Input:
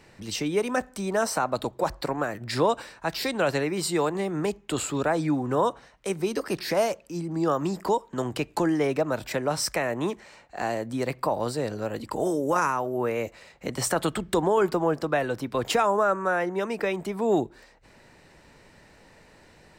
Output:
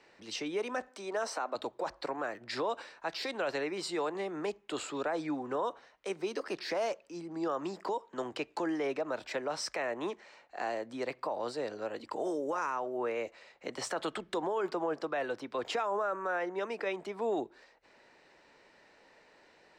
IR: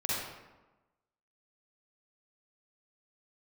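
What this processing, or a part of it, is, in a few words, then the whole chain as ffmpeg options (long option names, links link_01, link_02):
DJ mixer with the lows and highs turned down: -filter_complex "[0:a]acrossover=split=280 6700:gain=0.126 1 0.0891[link_01][link_02][link_03];[link_01][link_02][link_03]amix=inputs=3:normalize=0,alimiter=limit=-19.5dB:level=0:latency=1:release=30,asettb=1/sr,asplit=3[link_04][link_05][link_06];[link_04]atrim=end=0.884[link_07];[link_05]atrim=start=0.88:end=1.55,asetpts=PTS-STARTPTS,afade=type=in:duration=0.004:curve=qsin,afade=type=out:start_time=0.666:duration=0.004:curve=qsin,highpass=frequency=230:width=0.5412,highpass=frequency=230:width=1.3066[link_08];[link_06]atrim=start=1.546[link_09];[link_07][link_08]acrossfade=duration=0.004:curve1=hsin:curve2=qsin[link_10];[link_10][link_09]acrossfade=duration=0.004:curve1=qsin:curve2=hsin,volume=-5.5dB"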